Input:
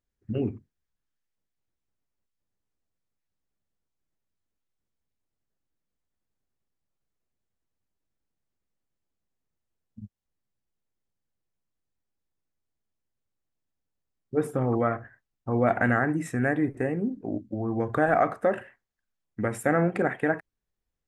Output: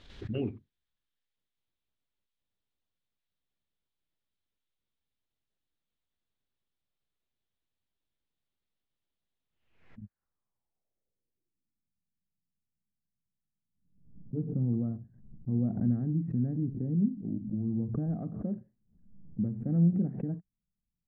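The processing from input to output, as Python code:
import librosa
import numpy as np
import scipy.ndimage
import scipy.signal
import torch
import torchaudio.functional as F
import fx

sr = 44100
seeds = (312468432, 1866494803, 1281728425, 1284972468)

y = fx.filter_sweep_lowpass(x, sr, from_hz=3600.0, to_hz=190.0, start_s=9.44, end_s=11.96, q=3.2)
y = fx.pre_swell(y, sr, db_per_s=80.0)
y = y * librosa.db_to_amplitude(-5.0)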